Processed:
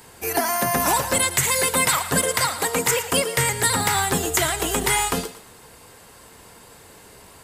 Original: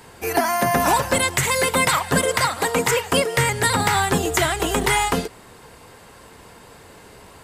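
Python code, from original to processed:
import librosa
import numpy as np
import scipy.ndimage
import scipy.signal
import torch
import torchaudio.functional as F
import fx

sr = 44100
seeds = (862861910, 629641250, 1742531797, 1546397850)

y = fx.high_shelf(x, sr, hz=5600.0, db=9.5)
y = fx.echo_thinned(y, sr, ms=114, feedback_pct=32, hz=420.0, wet_db=-13)
y = y * librosa.db_to_amplitude(-3.5)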